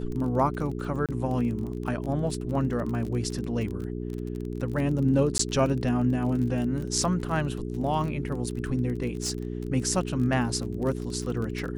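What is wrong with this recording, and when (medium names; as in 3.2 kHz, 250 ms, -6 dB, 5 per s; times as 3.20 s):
crackle 27 per s -32 dBFS
hum 60 Hz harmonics 7 -33 dBFS
1.06–1.09 s: dropout 27 ms
5.38–5.39 s: dropout 14 ms
9.22–9.67 s: clipped -24 dBFS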